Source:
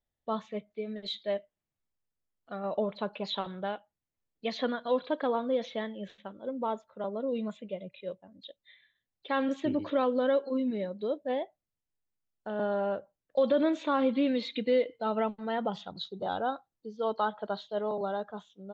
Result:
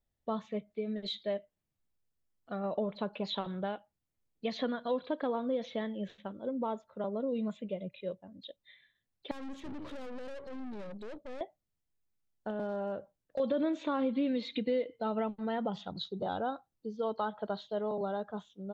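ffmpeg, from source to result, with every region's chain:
-filter_complex "[0:a]asettb=1/sr,asplit=3[s0][s1][s2];[s0]atrim=end=9.314[s3];[s1]atrim=start=9.31:end=11.41,asetpts=PTS-STARTPTS,afade=t=in:d=0.004:c=qsin,afade=t=out:st=2.096:d=0.004:c=qsin,acompressor=threshold=0.0282:ratio=3:attack=3.2:release=140:knee=1:detection=peak,aeval=exprs='(tanh(158*val(0)+0.55)-tanh(0.55))/158':c=same,bandreject=f=700:w=20[s4];[s2]atrim=start=11.406[s5];[s3][s4]acrossfade=d=0.004:c1=hsin:c2=qsin[s6];[s6][s5]acrossfade=d=0.004:c1=qsin:c2=hsin,asettb=1/sr,asplit=3[s7][s8][s9];[s7]atrim=end=12.504[s10];[s8]atrim=start=12.5:end=13.4,asetpts=PTS-STARTPTS,afade=t=in:d=0.004:c=qsin,afade=t=out:st=0.896:d=0.004:c=qsin,acompressor=threshold=0.0178:ratio=2:attack=3.2:release=140:knee=1:detection=peak,asoftclip=type=hard:threshold=0.0422[s11];[s9]atrim=start=13.396[s12];[s10][s11]acrossfade=d=0.004:c1=hsin:c2=qsin[s13];[s13][s12]acrossfade=d=0.004:c1=qsin:c2=hsin,lowshelf=f=380:g=6.5,acompressor=threshold=0.0251:ratio=2,volume=0.891"

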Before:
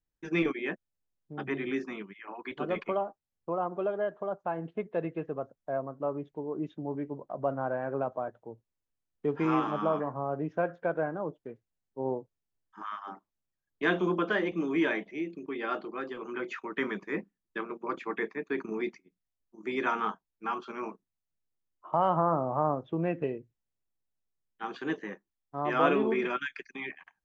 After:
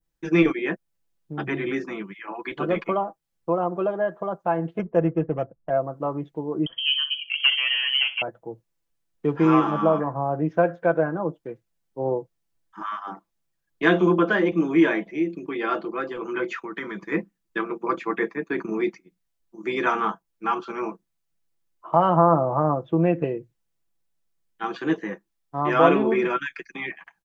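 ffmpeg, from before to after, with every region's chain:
-filter_complex "[0:a]asettb=1/sr,asplit=3[s0][s1][s2];[s0]atrim=end=4.794[s3];[s1]atrim=start=4.79:end=5.7,asetpts=PTS-STARTPTS,afade=t=in:d=0.004:c=qsin,afade=t=out:st=0.906:d=0.004:c=qsin,lowshelf=f=160:g=8.5,adynamicsmooth=sensitivity=4.5:basefreq=870,asuperstop=centerf=4200:order=12:qfactor=2[s4];[s2]atrim=start=5.696[s5];[s3][s4]acrossfade=d=0.004:c1=hsin:c2=qsin[s6];[s6][s5]acrossfade=d=0.004:c1=qsin:c2=hsin,asettb=1/sr,asplit=3[s7][s8][s9];[s7]atrim=end=6.664[s10];[s8]atrim=start=6.66:end=8.22,asetpts=PTS-STARTPTS,afade=t=in:d=0.004:c=qsin,afade=t=out:st=1.556:d=0.004:c=qsin,aeval=exprs='0.141*sin(PI/2*1.41*val(0)/0.141)':c=same,aecho=1:1:63|126|189:0.211|0.0592|0.0166,atrim=end_sample=68796,lowpass=f=2900:t=q:w=0.5098,lowpass=f=2900:t=q:w=0.6013,lowpass=f=2900:t=q:w=0.9,lowpass=f=2900:t=q:w=2.563,afreqshift=-3400[s11];[s9]atrim=start=8.216[s12];[s10][s11]acrossfade=d=0.004:c1=hsin:c2=qsin[s13];[s13][s12]acrossfade=d=0.004:c1=qsin:c2=hsin,asettb=1/sr,asplit=3[s14][s15][s16];[s14]atrim=end=16.644[s17];[s15]atrim=start=16.64:end=17.12,asetpts=PTS-STARTPTS,afade=t=in:d=0.004:c=qsin,afade=t=out:st=0.476:d=0.004:c=qsin,acompressor=threshold=0.01:ratio=2:attack=3.2:release=140:knee=1:detection=peak,equalizer=f=580:w=1.5:g=-2.5,bandreject=f=2700:w=7.7[s18];[s16]atrim=start=17.116[s19];[s17][s18]acrossfade=d=0.004:c1=hsin:c2=qsin[s20];[s20][s19]acrossfade=d=0.004:c1=qsin:c2=hsin,adynamicequalizer=threshold=0.00355:dfrequency=3500:dqfactor=0.72:tfrequency=3500:tqfactor=0.72:attack=5:release=100:ratio=0.375:range=3:mode=cutabove:tftype=bell,aecho=1:1:6:0.52,volume=2.24"

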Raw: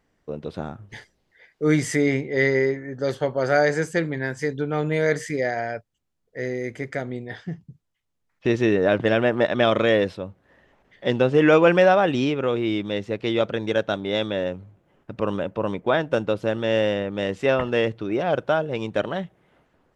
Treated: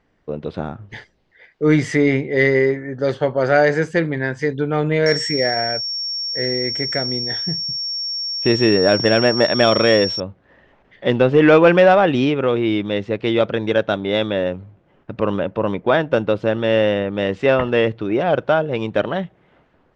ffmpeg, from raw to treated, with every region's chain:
-filter_complex "[0:a]asettb=1/sr,asplit=3[s0][s1][s2];[s0]atrim=end=5.064[s3];[s1]atrim=start=5.06:end=10.2,asetpts=PTS-STARTPTS,afade=t=in:d=0.004:c=qsin,afade=t=out:st=5.136:d=0.004:c=qsin,aeval=exprs='val(0)+0.0562*sin(2*PI*5500*n/s)':c=same,lowpass=f=7900:t=q:w=5.4,aeval=exprs='sgn(val(0))*max(abs(val(0))-0.00794,0)':c=same[s4];[s2]atrim=start=10.196[s5];[s3][s4]acrossfade=d=0.004:c1=hsin:c2=qsin[s6];[s6][s5]acrossfade=d=0.004:c1=qsin:c2=hsin,lowpass=4300,acontrast=33"

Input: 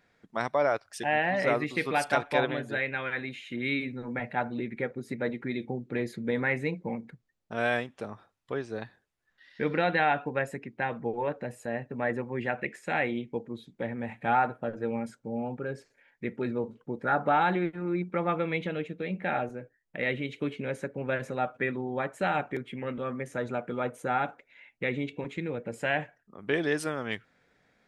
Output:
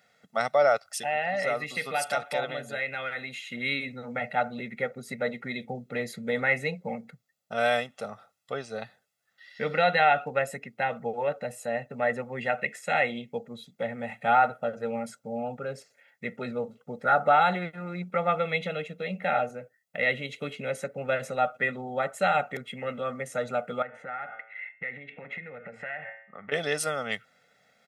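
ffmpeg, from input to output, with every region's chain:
-filter_complex "[0:a]asettb=1/sr,asplit=3[s0][s1][s2];[s0]atrim=end=0.854[s3];[s1]atrim=start=0.85:end=3.41,asetpts=PTS-STARTPTS,afade=t=in:d=0.004:c=qsin,afade=t=out:st=2.556:d=0.004:c=qsin,acompressor=threshold=0.0141:ratio=1.5:attack=3.2:release=140:knee=1:detection=peak,highshelf=f=11000:g=4[s4];[s2]atrim=start=3.406[s5];[s3][s4]acrossfade=d=0.004:c1=hsin:c2=qsin[s6];[s6][s5]acrossfade=d=0.004:c1=qsin:c2=hsin,asettb=1/sr,asplit=3[s7][s8][s9];[s7]atrim=end=23.824[s10];[s8]atrim=start=23.82:end=26.52,asetpts=PTS-STARTPTS,afade=t=in:d=0.004:c=qsin,afade=t=out:st=2.696:d=0.004:c=qsin,bandreject=f=111.4:t=h:w=4,bandreject=f=222.8:t=h:w=4,bandreject=f=334.2:t=h:w=4,bandreject=f=445.6:t=h:w=4,bandreject=f=557:t=h:w=4,bandreject=f=668.4:t=h:w=4,bandreject=f=779.8:t=h:w=4,bandreject=f=891.2:t=h:w=4,bandreject=f=1002.6:t=h:w=4,bandreject=f=1114:t=h:w=4,bandreject=f=1225.4:t=h:w=4,bandreject=f=1336.8:t=h:w=4,bandreject=f=1448.2:t=h:w=4,bandreject=f=1559.6:t=h:w=4,bandreject=f=1671:t=h:w=4,bandreject=f=1782.4:t=h:w=4,bandreject=f=1893.8:t=h:w=4,bandreject=f=2005.2:t=h:w=4,bandreject=f=2116.6:t=h:w=4,bandreject=f=2228:t=h:w=4,bandreject=f=2339.4:t=h:w=4,bandreject=f=2450.8:t=h:w=4,bandreject=f=2562.2:t=h:w=4,bandreject=f=2673.6:t=h:w=4,bandreject=f=2785:t=h:w=4,bandreject=f=2896.4:t=h:w=4,bandreject=f=3007.8:t=h:w=4,bandreject=f=3119.2:t=h:w=4,bandreject=f=3230.6:t=h:w=4,bandreject=f=3342:t=h:w=4,bandreject=f=3453.4:t=h:w=4,bandreject=f=3564.8:t=h:w=4,bandreject=f=3676.2:t=h:w=4,acompressor=threshold=0.0112:ratio=16:attack=3.2:release=140:knee=1:detection=peak,lowpass=f=1900:t=q:w=3.9[s11];[s9]atrim=start=26.516[s12];[s10][s11]acrossfade=d=0.004:c1=hsin:c2=qsin[s13];[s13][s12]acrossfade=d=0.004:c1=qsin:c2=hsin,highpass=180,highshelf=f=3700:g=7.5,aecho=1:1:1.5:0.84"

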